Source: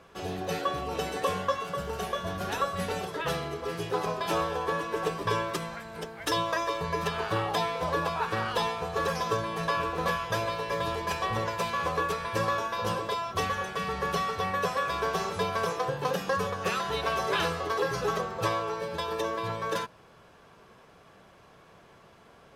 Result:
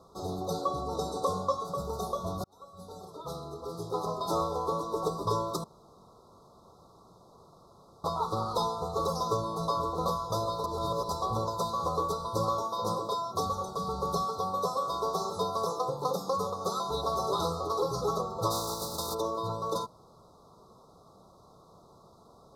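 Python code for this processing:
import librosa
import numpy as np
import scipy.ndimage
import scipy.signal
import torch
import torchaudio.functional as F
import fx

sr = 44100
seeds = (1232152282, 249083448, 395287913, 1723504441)

y = fx.lowpass(x, sr, hz=11000.0, slope=12, at=(0.53, 1.65))
y = fx.highpass(y, sr, hz=120.0, slope=12, at=(12.63, 13.46))
y = fx.highpass(y, sr, hz=180.0, slope=6, at=(14.25, 16.91))
y = fx.spec_flatten(y, sr, power=0.41, at=(18.5, 19.13), fade=0.02)
y = fx.edit(y, sr, fx.fade_in_span(start_s=2.44, length_s=1.98),
    fx.room_tone_fill(start_s=5.64, length_s=2.4),
    fx.reverse_span(start_s=10.64, length_s=0.45), tone=tone)
y = scipy.signal.sosfilt(scipy.signal.cheby1(5, 1.0, [1300.0, 3700.0], 'bandstop', fs=sr, output='sos'), y)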